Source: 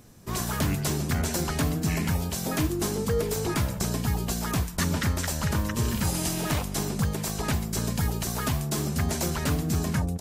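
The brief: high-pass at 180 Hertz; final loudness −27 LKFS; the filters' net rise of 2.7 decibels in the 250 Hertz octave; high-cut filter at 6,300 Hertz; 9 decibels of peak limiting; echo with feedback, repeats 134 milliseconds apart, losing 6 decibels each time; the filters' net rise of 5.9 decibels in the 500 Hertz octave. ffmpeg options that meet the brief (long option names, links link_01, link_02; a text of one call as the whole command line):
ffmpeg -i in.wav -af "highpass=180,lowpass=6300,equalizer=frequency=250:width_type=o:gain=4.5,equalizer=frequency=500:width_type=o:gain=6,alimiter=limit=-20.5dB:level=0:latency=1,aecho=1:1:134|268|402|536|670|804:0.501|0.251|0.125|0.0626|0.0313|0.0157,volume=2dB" out.wav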